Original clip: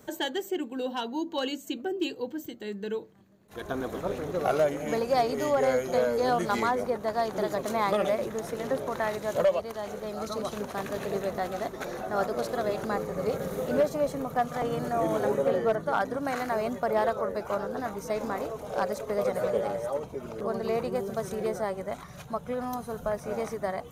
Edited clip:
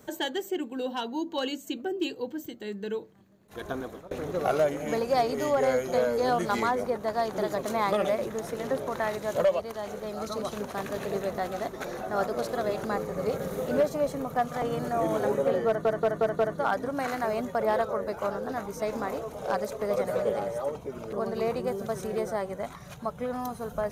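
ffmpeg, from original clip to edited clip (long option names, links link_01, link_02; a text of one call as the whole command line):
ffmpeg -i in.wav -filter_complex "[0:a]asplit=6[link_01][link_02][link_03][link_04][link_05][link_06];[link_01]atrim=end=4.11,asetpts=PTS-STARTPTS,afade=type=out:start_time=3.68:duration=0.43:silence=0.0630957[link_07];[link_02]atrim=start=4.11:end=15.852,asetpts=PTS-STARTPTS,afade=type=in:duration=0.004:curve=hsin:silence=0.0630957[link_08];[link_03]atrim=start=15.668:end=15.852[link_09];[link_04]atrim=start=15.668:end=15.852[link_10];[link_05]atrim=start=15.668:end=15.852[link_11];[link_06]atrim=start=15.668[link_12];[link_07][link_08]concat=n=2:v=0:a=1[link_13];[link_13][link_09]acrossfade=duration=0.004:curve1=hsin:curve2=hsin[link_14];[link_14][link_10]acrossfade=duration=0.004:curve1=hsin:curve2=hsin[link_15];[link_15][link_11]acrossfade=duration=0.004:curve1=hsin:curve2=hsin[link_16];[link_16][link_12]acrossfade=duration=0.004:curve1=hsin:curve2=hsin" out.wav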